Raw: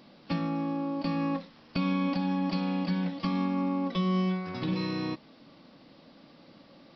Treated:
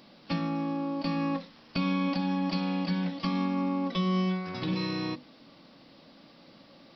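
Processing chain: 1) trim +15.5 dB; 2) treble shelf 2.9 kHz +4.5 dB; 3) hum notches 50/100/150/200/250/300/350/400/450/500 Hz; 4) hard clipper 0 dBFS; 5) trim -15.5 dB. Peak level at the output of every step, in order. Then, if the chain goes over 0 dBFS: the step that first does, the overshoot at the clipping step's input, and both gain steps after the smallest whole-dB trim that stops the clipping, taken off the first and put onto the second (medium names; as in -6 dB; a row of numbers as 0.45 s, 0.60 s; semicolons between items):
-3.0 dBFS, -2.5 dBFS, -3.0 dBFS, -3.0 dBFS, -18.5 dBFS; nothing clips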